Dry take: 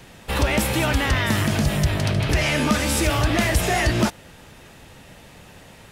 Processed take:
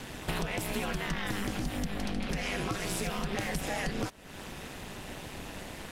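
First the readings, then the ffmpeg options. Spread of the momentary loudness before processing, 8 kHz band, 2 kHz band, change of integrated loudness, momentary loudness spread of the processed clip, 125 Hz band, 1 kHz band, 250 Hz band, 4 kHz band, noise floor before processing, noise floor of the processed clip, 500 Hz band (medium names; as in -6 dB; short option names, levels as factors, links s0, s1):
3 LU, -12.0 dB, -12.5 dB, -14.0 dB, 9 LU, -16.0 dB, -11.5 dB, -11.5 dB, -12.0 dB, -46 dBFS, -45 dBFS, -12.0 dB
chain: -af "acompressor=threshold=0.0178:ratio=6,aeval=exprs='val(0)*sin(2*PI*100*n/s)':c=same,volume=2"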